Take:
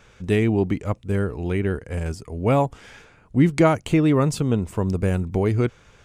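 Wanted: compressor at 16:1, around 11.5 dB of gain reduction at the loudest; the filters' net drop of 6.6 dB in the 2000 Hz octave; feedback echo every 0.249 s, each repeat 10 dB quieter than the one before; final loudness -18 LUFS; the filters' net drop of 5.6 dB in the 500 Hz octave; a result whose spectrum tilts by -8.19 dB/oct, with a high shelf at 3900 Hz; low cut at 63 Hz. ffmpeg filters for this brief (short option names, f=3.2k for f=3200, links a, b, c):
-af "highpass=63,equalizer=f=500:t=o:g=-7,equalizer=f=2k:t=o:g=-7,highshelf=f=3.9k:g=-3.5,acompressor=threshold=-24dB:ratio=16,aecho=1:1:249|498|747|996:0.316|0.101|0.0324|0.0104,volume=12.5dB"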